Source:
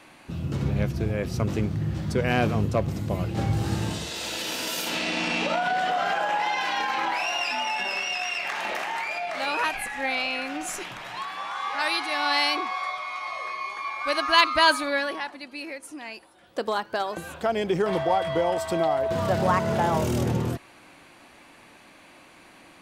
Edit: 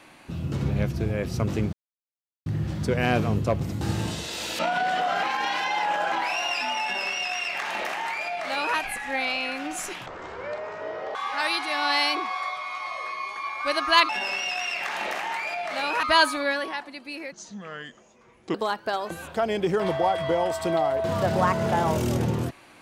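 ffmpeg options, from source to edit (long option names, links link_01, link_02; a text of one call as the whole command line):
ffmpeg -i in.wav -filter_complex "[0:a]asplit=12[link_01][link_02][link_03][link_04][link_05][link_06][link_07][link_08][link_09][link_10][link_11][link_12];[link_01]atrim=end=1.73,asetpts=PTS-STARTPTS,afade=type=out:start_time=1.726:duration=0.004:curve=hsin,apad=pad_dur=0.73[link_13];[link_02]atrim=start=1.73:end=3.082,asetpts=PTS-STARTPTS,afade=type=in:duration=0.004:curve=hsin[link_14];[link_03]atrim=start=3.638:end=4.422[link_15];[link_04]atrim=start=5.488:end=6.132[link_16];[link_05]atrim=start=6.128:end=7.022,asetpts=PTS-STARTPTS,areverse[link_17];[link_06]atrim=start=7.018:end=10.964[link_18];[link_07]atrim=start=10.96:end=11.56,asetpts=PTS-STARTPTS,asetrate=24255,aresample=44100,atrim=end_sample=48109,asetpts=PTS-STARTPTS[link_19];[link_08]atrim=start=11.556:end=14.502[link_20];[link_09]atrim=start=7.728:end=9.672[link_21];[link_10]atrim=start=14.498:end=15.794[link_22];[link_11]atrim=start=15.79:end=16.61,asetpts=PTS-STARTPTS,asetrate=29547,aresample=44100,atrim=end_sample=53973,asetpts=PTS-STARTPTS[link_23];[link_12]atrim=start=16.606[link_24];[link_13][link_14]concat=n=2:v=0:a=1[link_25];[link_25][link_15]acrossfade=duration=0.004:curve1=hsin:curve2=hsin[link_26];[link_26][link_16]acrossfade=duration=0.004:curve1=hsin:curve2=hsin[link_27];[link_27][link_17]acrossfade=duration=0.004:curve1=hsin:curve2=hsin[link_28];[link_28][link_18]acrossfade=duration=0.004:curve1=hsin:curve2=hsin[link_29];[link_29][link_19]acrossfade=duration=0.004:curve1=hsin:curve2=hsin[link_30];[link_30][link_20]acrossfade=duration=0.004:curve1=hsin:curve2=hsin[link_31];[link_31][link_21]acrossfade=duration=0.004:curve1=hsin:curve2=hsin[link_32];[link_32][link_22]acrossfade=duration=0.004:curve1=hsin:curve2=hsin[link_33];[link_33][link_23]acrossfade=duration=0.004:curve1=hsin:curve2=hsin[link_34];[link_34][link_24]acrossfade=duration=0.004:curve1=hsin:curve2=hsin" out.wav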